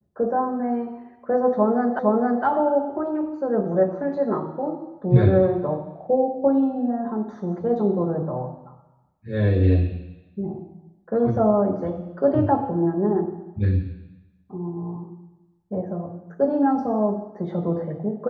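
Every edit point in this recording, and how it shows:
1.99 repeat of the last 0.46 s

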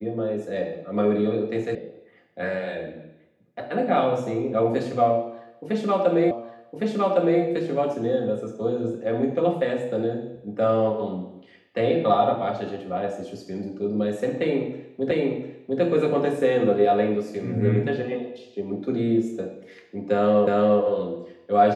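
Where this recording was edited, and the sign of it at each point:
1.75 sound cut off
6.31 repeat of the last 1.11 s
15.11 repeat of the last 0.7 s
20.47 repeat of the last 0.35 s

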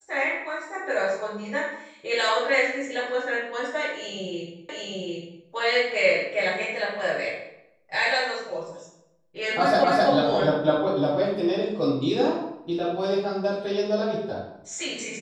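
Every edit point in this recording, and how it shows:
4.69 repeat of the last 0.75 s
9.84 repeat of the last 0.26 s

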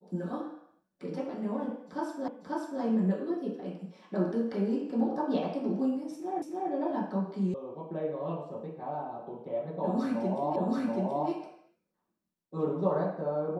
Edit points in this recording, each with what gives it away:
2.28 repeat of the last 0.54 s
6.42 repeat of the last 0.29 s
7.54 sound cut off
10.56 repeat of the last 0.73 s

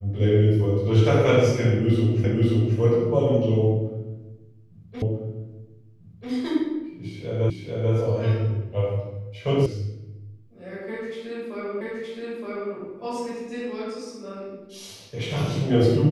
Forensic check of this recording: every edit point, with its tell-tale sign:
2.24 repeat of the last 0.53 s
5.02 repeat of the last 1.29 s
7.5 repeat of the last 0.44 s
9.66 sound cut off
11.81 repeat of the last 0.92 s

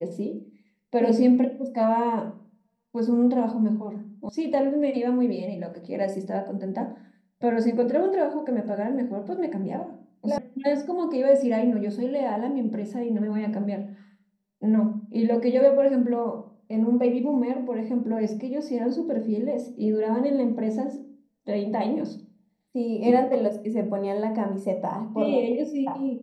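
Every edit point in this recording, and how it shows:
4.29 sound cut off
10.38 sound cut off

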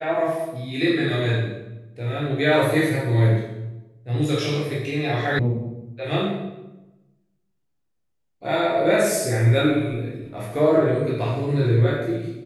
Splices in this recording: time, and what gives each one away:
5.39 sound cut off

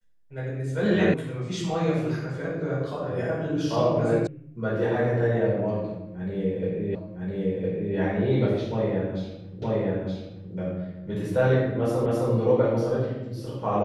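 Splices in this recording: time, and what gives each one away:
1.14 sound cut off
4.27 sound cut off
6.95 repeat of the last 1.01 s
9.62 repeat of the last 0.92 s
12.06 repeat of the last 0.26 s

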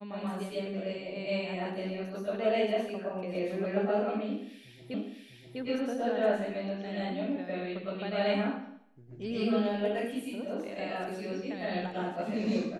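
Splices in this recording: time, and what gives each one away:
4.94 repeat of the last 0.65 s

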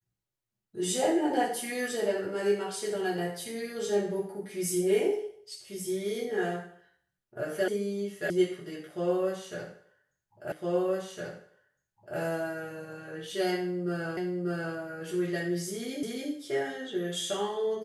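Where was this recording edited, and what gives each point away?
7.68 sound cut off
8.3 sound cut off
10.52 repeat of the last 1.66 s
14.17 repeat of the last 0.59 s
16.03 repeat of the last 0.28 s

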